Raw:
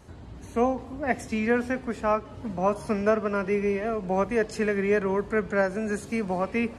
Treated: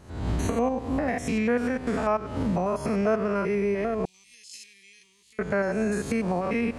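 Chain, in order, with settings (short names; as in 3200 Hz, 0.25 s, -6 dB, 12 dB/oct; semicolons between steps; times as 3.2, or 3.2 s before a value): stepped spectrum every 0.1 s; recorder AGC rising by 65 dB/s; 4.05–5.39 inverse Chebyshev high-pass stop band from 1600 Hz, stop band 40 dB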